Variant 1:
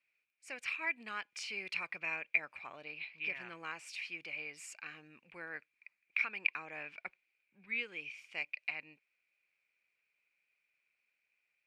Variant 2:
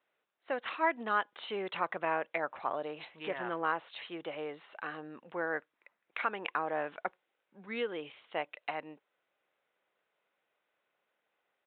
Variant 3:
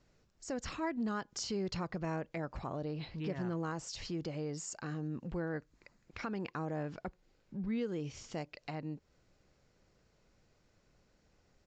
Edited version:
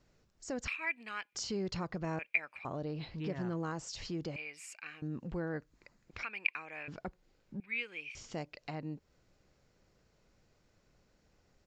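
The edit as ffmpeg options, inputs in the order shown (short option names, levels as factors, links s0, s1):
-filter_complex "[0:a]asplit=5[s0][s1][s2][s3][s4];[2:a]asplit=6[s5][s6][s7][s8][s9][s10];[s5]atrim=end=0.682[s11];[s0]atrim=start=0.678:end=1.352[s12];[s6]atrim=start=1.348:end=2.192[s13];[s1]atrim=start=2.188:end=2.652[s14];[s7]atrim=start=2.648:end=4.362[s15];[s2]atrim=start=4.358:end=5.022[s16];[s8]atrim=start=5.018:end=6.232[s17];[s3]atrim=start=6.228:end=6.882[s18];[s9]atrim=start=6.878:end=7.602[s19];[s4]atrim=start=7.598:end=8.152[s20];[s10]atrim=start=8.148[s21];[s11][s12]acrossfade=d=0.004:c1=hsin:c2=hsin[s22];[s22][s13]acrossfade=d=0.004:c1=hsin:c2=hsin[s23];[s23][s14]acrossfade=d=0.004:c1=hsin:c2=hsin[s24];[s24][s15]acrossfade=d=0.004:c1=hsin:c2=hsin[s25];[s25][s16]acrossfade=d=0.004:c1=hsin:c2=hsin[s26];[s26][s17]acrossfade=d=0.004:c1=hsin:c2=hsin[s27];[s27][s18]acrossfade=d=0.004:c1=hsin:c2=hsin[s28];[s28][s19]acrossfade=d=0.004:c1=hsin:c2=hsin[s29];[s29][s20]acrossfade=d=0.004:c1=hsin:c2=hsin[s30];[s30][s21]acrossfade=d=0.004:c1=hsin:c2=hsin"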